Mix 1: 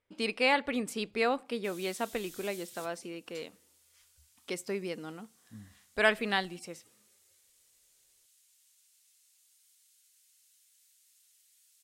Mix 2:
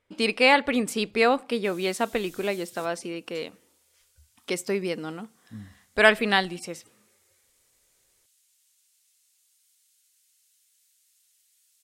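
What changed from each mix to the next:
speech +8.0 dB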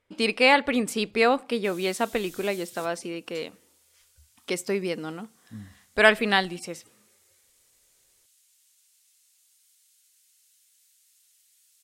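background +3.0 dB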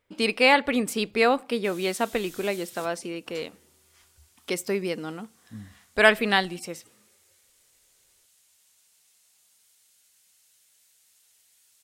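speech: remove LPF 12000 Hz 12 dB/oct; background: remove passive tone stack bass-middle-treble 10-0-10

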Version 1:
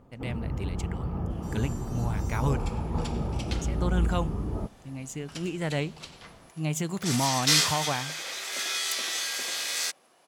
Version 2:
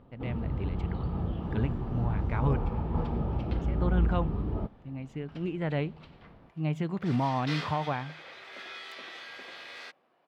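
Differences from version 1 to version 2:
first sound: remove running mean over 11 samples; second sound -5.0 dB; master: add air absorption 390 m

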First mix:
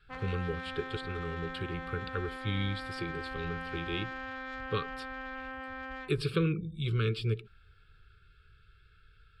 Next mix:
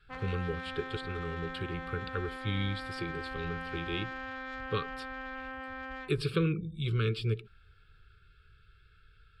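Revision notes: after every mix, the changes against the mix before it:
none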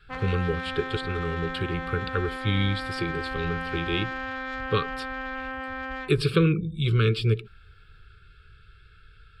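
speech +8.0 dB; background +7.5 dB

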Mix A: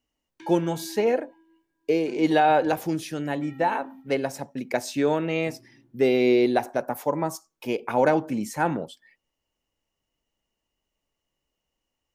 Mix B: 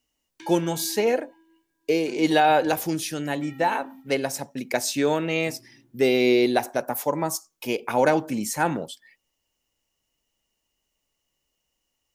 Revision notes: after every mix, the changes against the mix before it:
master: add high shelf 3100 Hz +10.5 dB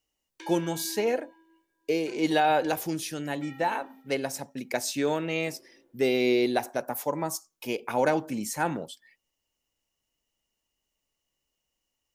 speech -4.5 dB; background: add resonant high-pass 490 Hz, resonance Q 4.1

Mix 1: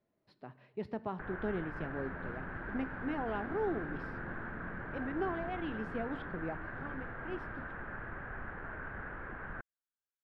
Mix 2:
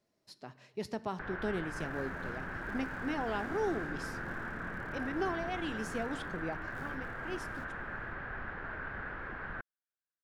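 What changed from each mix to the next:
master: remove air absorption 450 m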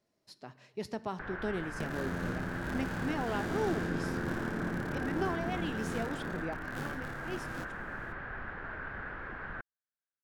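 second sound +11.5 dB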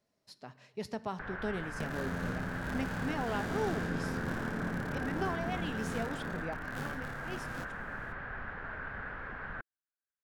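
master: add bell 340 Hz -7.5 dB 0.26 oct

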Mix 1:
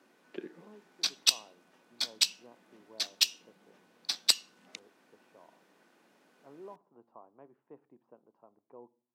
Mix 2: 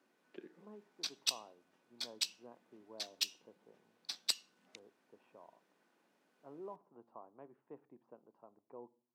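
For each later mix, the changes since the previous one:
background -10.0 dB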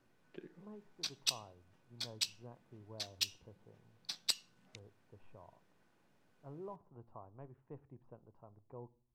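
master: remove HPF 220 Hz 24 dB/oct

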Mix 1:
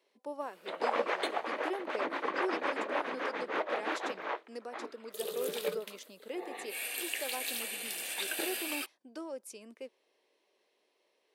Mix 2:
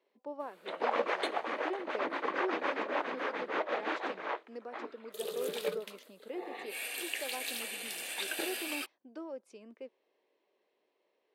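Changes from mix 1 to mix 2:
speech: add tape spacing loss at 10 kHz 23 dB; background: add high shelf 11000 Hz -7.5 dB

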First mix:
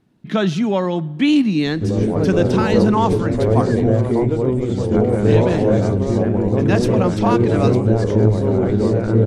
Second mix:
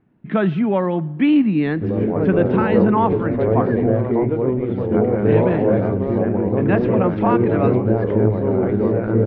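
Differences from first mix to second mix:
background: add low shelf 80 Hz -12 dB; master: add LPF 2400 Hz 24 dB/oct

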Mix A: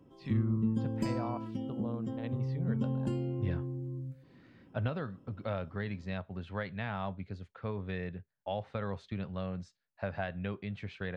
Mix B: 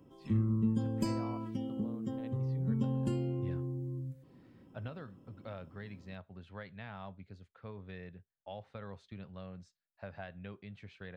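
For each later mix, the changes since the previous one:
speech -9.5 dB; master: add high shelf 6400 Hz +7.5 dB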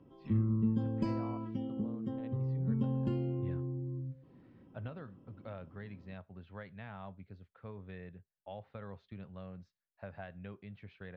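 master: add air absorption 230 m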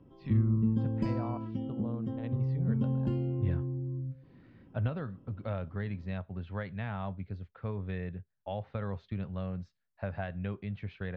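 speech +8.0 dB; master: add low shelf 110 Hz +9 dB

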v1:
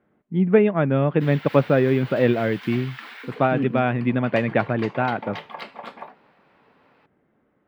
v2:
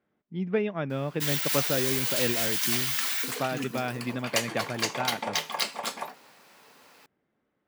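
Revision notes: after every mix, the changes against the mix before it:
speech -12.0 dB; master: remove air absorption 470 m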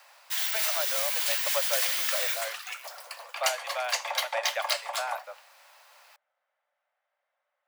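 background: entry -0.90 s; master: add steep high-pass 540 Hz 96 dB/oct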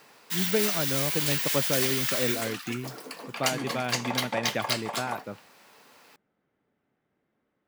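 master: remove steep high-pass 540 Hz 96 dB/oct

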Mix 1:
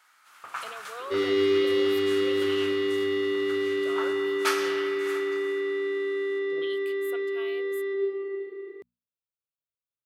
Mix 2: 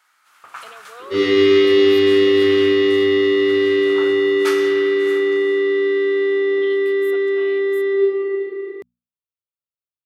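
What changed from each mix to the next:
second sound: send +11.5 dB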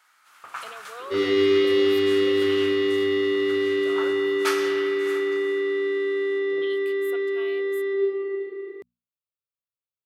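second sound: send -7.0 dB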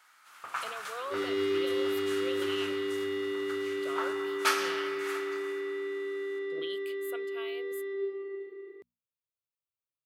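second sound -10.5 dB

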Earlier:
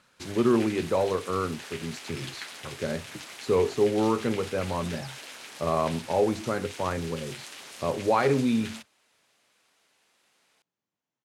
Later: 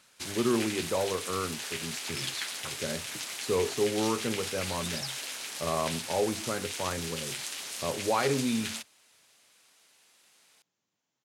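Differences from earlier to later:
speech -5.0 dB; second sound +3.5 dB; master: add high shelf 3400 Hz +10 dB

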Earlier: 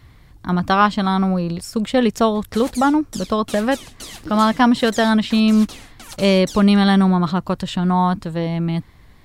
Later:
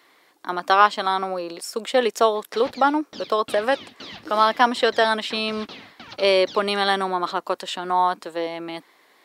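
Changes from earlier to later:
speech: add HPF 360 Hz 24 dB/oct; background: add inverse Chebyshev low-pass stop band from 8200 Hz, stop band 40 dB

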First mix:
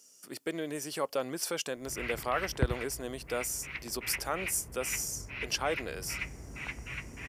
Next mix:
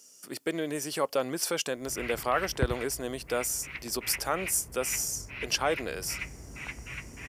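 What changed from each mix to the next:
speech +4.0 dB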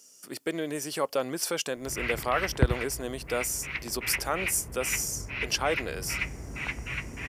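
background +6.0 dB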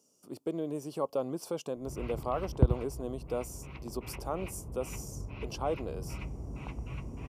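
master: add EQ curve 140 Hz 0 dB, 1100 Hz -5 dB, 1800 Hz -27 dB, 2600 Hz -16 dB

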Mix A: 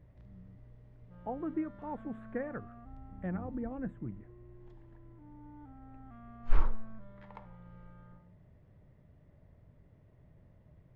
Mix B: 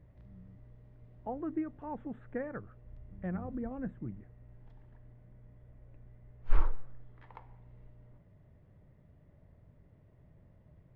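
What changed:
first sound: muted; master: add air absorption 77 m

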